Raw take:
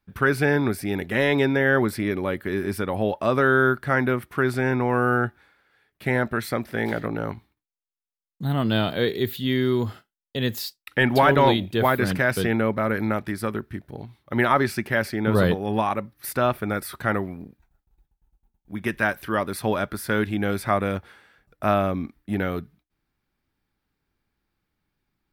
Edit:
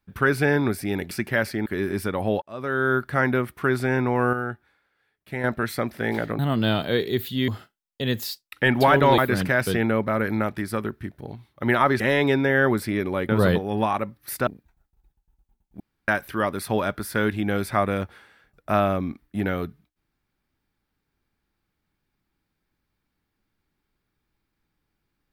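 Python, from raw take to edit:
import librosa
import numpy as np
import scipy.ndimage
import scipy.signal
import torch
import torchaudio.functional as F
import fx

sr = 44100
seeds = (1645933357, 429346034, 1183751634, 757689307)

y = fx.edit(x, sr, fx.swap(start_s=1.11, length_s=1.29, other_s=14.7, other_length_s=0.55),
    fx.fade_in_span(start_s=3.16, length_s=0.66),
    fx.clip_gain(start_s=5.07, length_s=1.11, db=-7.0),
    fx.cut(start_s=7.13, length_s=1.34),
    fx.cut(start_s=9.56, length_s=0.27),
    fx.cut(start_s=11.53, length_s=0.35),
    fx.cut(start_s=16.43, length_s=0.98),
    fx.room_tone_fill(start_s=18.74, length_s=0.28), tone=tone)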